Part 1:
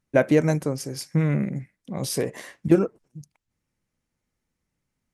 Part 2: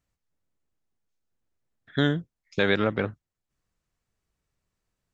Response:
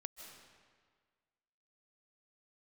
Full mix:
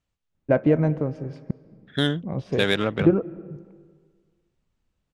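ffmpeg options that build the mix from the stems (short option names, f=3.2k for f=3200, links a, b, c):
-filter_complex "[0:a]lowpass=1.5k,lowshelf=f=83:g=11,adelay=350,volume=-3.5dB,asplit=3[a][b][c];[a]atrim=end=1.51,asetpts=PTS-STARTPTS,afade=t=out:st=1.506:d=0.004:c=hsin[d];[b]atrim=start=1.51:end=2.14,asetpts=PTS-STARTPTS,volume=0[e];[c]atrim=start=2.14,asetpts=PTS-STARTPTS,afade=t=in:d=0.004:c=hsin[f];[d][e][f]concat=n=3:v=0:a=1,asplit=2[g][h];[h]volume=-5dB[i];[1:a]volume=0dB[j];[2:a]atrim=start_sample=2205[k];[i][k]afir=irnorm=-1:irlink=0[l];[g][j][l]amix=inputs=3:normalize=0,aexciter=amount=1.9:drive=6.8:freq=2.7k,adynamicsmooth=sensitivity=1.5:basefreq=4.1k"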